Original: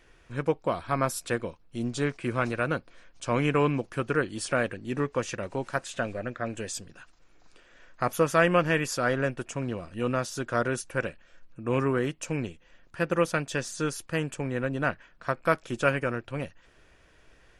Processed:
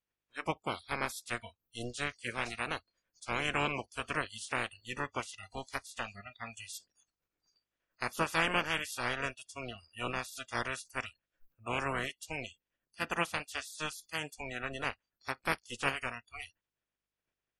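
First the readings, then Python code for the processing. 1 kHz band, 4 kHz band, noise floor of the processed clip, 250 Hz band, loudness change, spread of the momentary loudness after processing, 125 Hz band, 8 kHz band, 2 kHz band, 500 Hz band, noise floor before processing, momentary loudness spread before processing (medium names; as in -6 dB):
-6.0 dB, +0.5 dB, under -85 dBFS, -13.5 dB, -7.5 dB, 13 LU, -13.5 dB, -7.0 dB, -4.0 dB, -13.5 dB, -59 dBFS, 9 LU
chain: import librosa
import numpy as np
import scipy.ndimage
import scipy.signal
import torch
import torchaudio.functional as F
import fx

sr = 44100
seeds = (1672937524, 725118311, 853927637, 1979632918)

y = fx.spec_clip(x, sr, under_db=23)
y = fx.dmg_buzz(y, sr, base_hz=50.0, harmonics=10, level_db=-63.0, tilt_db=-4, odd_only=False)
y = fx.noise_reduce_blind(y, sr, reduce_db=29)
y = y * 10.0 ** (-8.0 / 20.0)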